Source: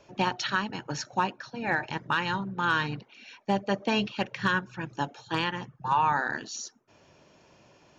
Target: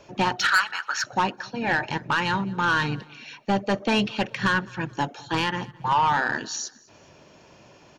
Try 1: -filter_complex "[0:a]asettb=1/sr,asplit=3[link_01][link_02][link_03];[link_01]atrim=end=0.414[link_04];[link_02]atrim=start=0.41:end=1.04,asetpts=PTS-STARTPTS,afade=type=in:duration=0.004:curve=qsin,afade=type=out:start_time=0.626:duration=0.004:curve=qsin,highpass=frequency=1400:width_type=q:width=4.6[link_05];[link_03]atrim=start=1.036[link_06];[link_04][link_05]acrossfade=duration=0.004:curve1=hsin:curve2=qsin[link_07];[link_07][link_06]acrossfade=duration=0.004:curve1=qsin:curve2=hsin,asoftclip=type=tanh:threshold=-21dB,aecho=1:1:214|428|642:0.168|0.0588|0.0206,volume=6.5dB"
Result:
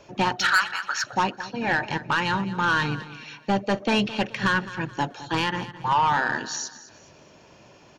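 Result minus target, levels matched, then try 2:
echo-to-direct +8.5 dB
-filter_complex "[0:a]asettb=1/sr,asplit=3[link_01][link_02][link_03];[link_01]atrim=end=0.414[link_04];[link_02]atrim=start=0.41:end=1.04,asetpts=PTS-STARTPTS,afade=type=in:duration=0.004:curve=qsin,afade=type=out:start_time=0.626:duration=0.004:curve=qsin,highpass=frequency=1400:width_type=q:width=4.6[link_05];[link_03]atrim=start=1.036[link_06];[link_04][link_05]acrossfade=duration=0.004:curve1=hsin:curve2=qsin[link_07];[link_07][link_06]acrossfade=duration=0.004:curve1=qsin:curve2=hsin,asoftclip=type=tanh:threshold=-21dB,aecho=1:1:214|428:0.0631|0.0221,volume=6.5dB"

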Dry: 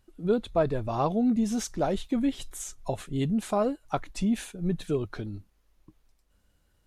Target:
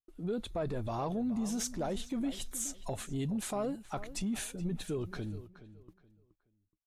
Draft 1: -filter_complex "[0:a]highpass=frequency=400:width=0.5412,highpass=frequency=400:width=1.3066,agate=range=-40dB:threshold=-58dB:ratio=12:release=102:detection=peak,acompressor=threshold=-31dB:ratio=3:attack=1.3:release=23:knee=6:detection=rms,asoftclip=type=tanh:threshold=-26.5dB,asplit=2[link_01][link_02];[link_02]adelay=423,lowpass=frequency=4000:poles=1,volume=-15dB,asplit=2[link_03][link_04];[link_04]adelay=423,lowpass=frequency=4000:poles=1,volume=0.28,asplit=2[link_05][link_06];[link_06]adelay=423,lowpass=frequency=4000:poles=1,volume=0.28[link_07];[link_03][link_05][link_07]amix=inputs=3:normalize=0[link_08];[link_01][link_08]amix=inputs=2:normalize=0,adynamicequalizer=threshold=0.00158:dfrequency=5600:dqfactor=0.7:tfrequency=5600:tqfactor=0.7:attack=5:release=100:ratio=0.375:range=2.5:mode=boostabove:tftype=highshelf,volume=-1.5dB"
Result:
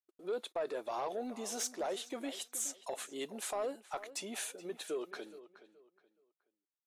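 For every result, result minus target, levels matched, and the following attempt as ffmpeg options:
soft clipping: distortion +12 dB; 500 Hz band +3.0 dB
-filter_complex "[0:a]highpass=frequency=400:width=0.5412,highpass=frequency=400:width=1.3066,agate=range=-40dB:threshold=-58dB:ratio=12:release=102:detection=peak,acompressor=threshold=-31dB:ratio=3:attack=1.3:release=23:knee=6:detection=rms,asoftclip=type=tanh:threshold=-20dB,asplit=2[link_01][link_02];[link_02]adelay=423,lowpass=frequency=4000:poles=1,volume=-15dB,asplit=2[link_03][link_04];[link_04]adelay=423,lowpass=frequency=4000:poles=1,volume=0.28,asplit=2[link_05][link_06];[link_06]adelay=423,lowpass=frequency=4000:poles=1,volume=0.28[link_07];[link_03][link_05][link_07]amix=inputs=3:normalize=0[link_08];[link_01][link_08]amix=inputs=2:normalize=0,adynamicequalizer=threshold=0.00158:dfrequency=5600:dqfactor=0.7:tfrequency=5600:tqfactor=0.7:attack=5:release=100:ratio=0.375:range=2.5:mode=boostabove:tftype=highshelf,volume=-1.5dB"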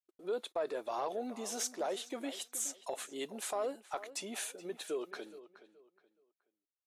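500 Hz band +3.0 dB
-filter_complex "[0:a]agate=range=-40dB:threshold=-58dB:ratio=12:release=102:detection=peak,acompressor=threshold=-31dB:ratio=3:attack=1.3:release=23:knee=6:detection=rms,asoftclip=type=tanh:threshold=-20dB,asplit=2[link_01][link_02];[link_02]adelay=423,lowpass=frequency=4000:poles=1,volume=-15dB,asplit=2[link_03][link_04];[link_04]adelay=423,lowpass=frequency=4000:poles=1,volume=0.28,asplit=2[link_05][link_06];[link_06]adelay=423,lowpass=frequency=4000:poles=1,volume=0.28[link_07];[link_03][link_05][link_07]amix=inputs=3:normalize=0[link_08];[link_01][link_08]amix=inputs=2:normalize=0,adynamicequalizer=threshold=0.00158:dfrequency=5600:dqfactor=0.7:tfrequency=5600:tqfactor=0.7:attack=5:release=100:ratio=0.375:range=2.5:mode=boostabove:tftype=highshelf,volume=-1.5dB"

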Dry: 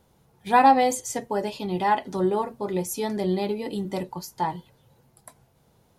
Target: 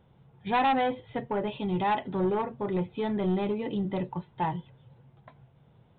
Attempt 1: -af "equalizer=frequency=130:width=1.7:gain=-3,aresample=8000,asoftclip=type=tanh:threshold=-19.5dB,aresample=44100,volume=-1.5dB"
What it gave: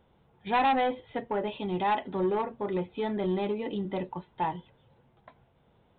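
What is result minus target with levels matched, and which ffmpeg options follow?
125 Hz band −4.0 dB
-af "equalizer=frequency=130:width=1.7:gain=9,aresample=8000,asoftclip=type=tanh:threshold=-19.5dB,aresample=44100,volume=-1.5dB"

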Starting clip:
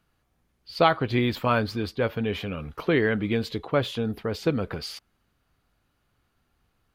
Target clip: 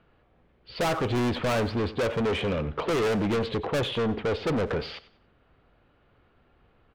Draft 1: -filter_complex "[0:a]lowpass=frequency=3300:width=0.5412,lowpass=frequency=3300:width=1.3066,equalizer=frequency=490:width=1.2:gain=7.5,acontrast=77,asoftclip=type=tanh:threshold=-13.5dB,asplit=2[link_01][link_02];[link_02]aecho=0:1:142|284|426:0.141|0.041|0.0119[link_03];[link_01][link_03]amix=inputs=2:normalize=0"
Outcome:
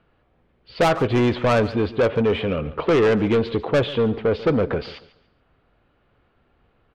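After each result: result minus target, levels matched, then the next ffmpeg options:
echo 48 ms late; soft clipping: distortion −6 dB
-filter_complex "[0:a]lowpass=frequency=3300:width=0.5412,lowpass=frequency=3300:width=1.3066,equalizer=frequency=490:width=1.2:gain=7.5,acontrast=77,asoftclip=type=tanh:threshold=-13.5dB,asplit=2[link_01][link_02];[link_02]aecho=0:1:94|188|282:0.141|0.041|0.0119[link_03];[link_01][link_03]amix=inputs=2:normalize=0"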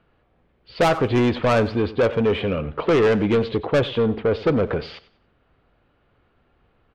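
soft clipping: distortion −6 dB
-filter_complex "[0:a]lowpass=frequency=3300:width=0.5412,lowpass=frequency=3300:width=1.3066,equalizer=frequency=490:width=1.2:gain=7.5,acontrast=77,asoftclip=type=tanh:threshold=-23.5dB,asplit=2[link_01][link_02];[link_02]aecho=0:1:94|188|282:0.141|0.041|0.0119[link_03];[link_01][link_03]amix=inputs=2:normalize=0"

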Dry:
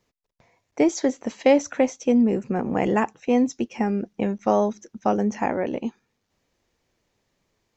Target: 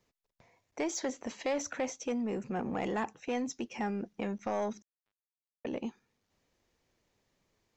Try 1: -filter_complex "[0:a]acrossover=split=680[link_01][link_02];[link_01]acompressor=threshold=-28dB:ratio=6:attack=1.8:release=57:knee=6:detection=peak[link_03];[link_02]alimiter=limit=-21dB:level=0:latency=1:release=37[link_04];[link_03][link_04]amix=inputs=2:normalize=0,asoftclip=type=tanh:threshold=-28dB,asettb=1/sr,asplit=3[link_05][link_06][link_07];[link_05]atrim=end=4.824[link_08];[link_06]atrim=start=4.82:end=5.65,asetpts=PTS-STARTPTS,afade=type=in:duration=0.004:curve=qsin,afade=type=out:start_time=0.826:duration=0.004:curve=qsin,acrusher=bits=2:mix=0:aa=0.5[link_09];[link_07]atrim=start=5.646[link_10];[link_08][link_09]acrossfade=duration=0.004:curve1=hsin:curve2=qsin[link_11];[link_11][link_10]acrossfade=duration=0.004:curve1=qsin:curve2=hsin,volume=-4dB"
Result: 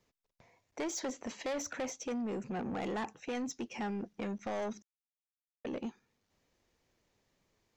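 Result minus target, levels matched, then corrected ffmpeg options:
soft clipping: distortion +8 dB
-filter_complex "[0:a]acrossover=split=680[link_01][link_02];[link_01]acompressor=threshold=-28dB:ratio=6:attack=1.8:release=57:knee=6:detection=peak[link_03];[link_02]alimiter=limit=-21dB:level=0:latency=1:release=37[link_04];[link_03][link_04]amix=inputs=2:normalize=0,asoftclip=type=tanh:threshold=-20.5dB,asettb=1/sr,asplit=3[link_05][link_06][link_07];[link_05]atrim=end=4.824[link_08];[link_06]atrim=start=4.82:end=5.65,asetpts=PTS-STARTPTS,afade=type=in:duration=0.004:curve=qsin,afade=type=out:start_time=0.826:duration=0.004:curve=qsin,acrusher=bits=2:mix=0:aa=0.5[link_09];[link_07]atrim=start=5.646[link_10];[link_08][link_09]acrossfade=duration=0.004:curve1=hsin:curve2=qsin[link_11];[link_11][link_10]acrossfade=duration=0.004:curve1=qsin:curve2=hsin,volume=-4dB"

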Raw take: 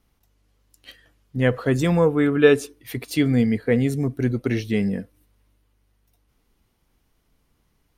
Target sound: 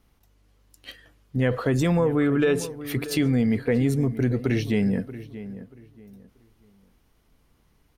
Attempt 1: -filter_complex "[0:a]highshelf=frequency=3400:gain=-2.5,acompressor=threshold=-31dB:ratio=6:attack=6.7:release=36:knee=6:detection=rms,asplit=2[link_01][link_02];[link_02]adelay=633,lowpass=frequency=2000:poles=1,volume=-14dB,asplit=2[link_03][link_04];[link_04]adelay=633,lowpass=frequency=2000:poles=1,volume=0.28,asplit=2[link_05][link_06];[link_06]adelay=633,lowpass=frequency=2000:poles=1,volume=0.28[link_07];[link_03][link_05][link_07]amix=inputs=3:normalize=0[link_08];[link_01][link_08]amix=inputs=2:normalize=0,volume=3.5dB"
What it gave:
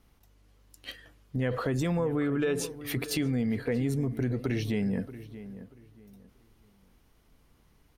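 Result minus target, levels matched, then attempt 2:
downward compressor: peak gain reduction +7 dB
-filter_complex "[0:a]highshelf=frequency=3400:gain=-2.5,acompressor=threshold=-22.5dB:ratio=6:attack=6.7:release=36:knee=6:detection=rms,asplit=2[link_01][link_02];[link_02]adelay=633,lowpass=frequency=2000:poles=1,volume=-14dB,asplit=2[link_03][link_04];[link_04]adelay=633,lowpass=frequency=2000:poles=1,volume=0.28,asplit=2[link_05][link_06];[link_06]adelay=633,lowpass=frequency=2000:poles=1,volume=0.28[link_07];[link_03][link_05][link_07]amix=inputs=3:normalize=0[link_08];[link_01][link_08]amix=inputs=2:normalize=0,volume=3.5dB"

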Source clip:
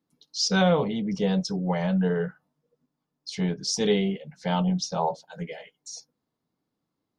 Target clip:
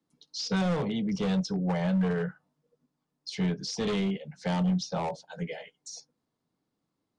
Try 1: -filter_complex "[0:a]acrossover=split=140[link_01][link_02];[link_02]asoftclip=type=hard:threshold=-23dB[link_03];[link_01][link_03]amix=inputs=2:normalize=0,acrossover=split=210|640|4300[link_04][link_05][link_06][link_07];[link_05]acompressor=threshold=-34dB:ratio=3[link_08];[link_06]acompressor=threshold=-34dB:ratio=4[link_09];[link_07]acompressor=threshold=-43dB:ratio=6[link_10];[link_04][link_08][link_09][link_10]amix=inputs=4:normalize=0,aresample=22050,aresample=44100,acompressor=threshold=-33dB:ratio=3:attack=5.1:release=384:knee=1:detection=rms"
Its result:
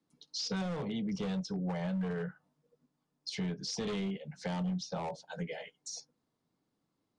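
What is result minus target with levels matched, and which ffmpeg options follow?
downward compressor: peak gain reduction +9.5 dB
-filter_complex "[0:a]acrossover=split=140[link_01][link_02];[link_02]asoftclip=type=hard:threshold=-23dB[link_03];[link_01][link_03]amix=inputs=2:normalize=0,acrossover=split=210|640|4300[link_04][link_05][link_06][link_07];[link_05]acompressor=threshold=-34dB:ratio=3[link_08];[link_06]acompressor=threshold=-34dB:ratio=4[link_09];[link_07]acompressor=threshold=-43dB:ratio=6[link_10];[link_04][link_08][link_09][link_10]amix=inputs=4:normalize=0,aresample=22050,aresample=44100"

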